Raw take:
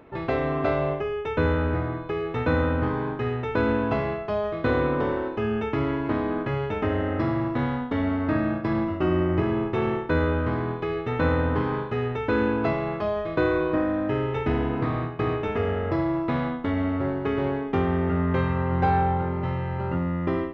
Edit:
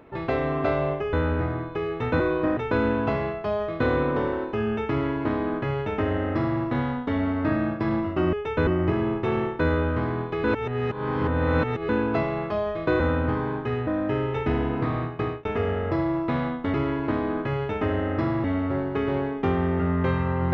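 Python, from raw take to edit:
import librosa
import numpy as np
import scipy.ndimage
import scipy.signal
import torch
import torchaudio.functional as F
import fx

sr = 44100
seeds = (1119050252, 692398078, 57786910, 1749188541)

y = fx.edit(x, sr, fx.move(start_s=1.13, length_s=0.34, to_s=9.17),
    fx.swap(start_s=2.54, length_s=0.87, other_s=13.5, other_length_s=0.37),
    fx.duplicate(start_s=5.75, length_s=1.7, to_s=16.74),
    fx.reverse_span(start_s=10.94, length_s=1.45),
    fx.fade_out_span(start_s=15.11, length_s=0.34, curve='qsin'), tone=tone)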